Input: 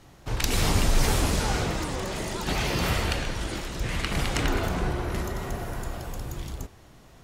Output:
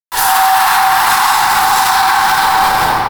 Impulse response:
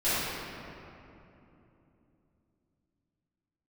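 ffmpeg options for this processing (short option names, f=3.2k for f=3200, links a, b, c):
-filter_complex "[0:a]acrossover=split=130|2900[a][b][c];[a]asoftclip=type=tanh:threshold=-27.5dB[d];[d][b][c]amix=inputs=3:normalize=0,aecho=1:1:1006:0.501,aresample=16000,aeval=exprs='sgn(val(0))*max(abs(val(0))-0.0133,0)':c=same,aresample=44100,afreqshift=300,acrusher=bits=5:mix=0:aa=0.000001,asetrate=103194,aresample=44100,equalizer=f=100:t=o:w=0.67:g=3,equalizer=f=2.5k:t=o:w=0.67:g=-9,equalizer=f=6.3k:t=o:w=0.67:g=-5[e];[1:a]atrim=start_sample=2205[f];[e][f]afir=irnorm=-1:irlink=0,alimiter=level_in=15dB:limit=-1dB:release=50:level=0:latency=1,volume=-1dB"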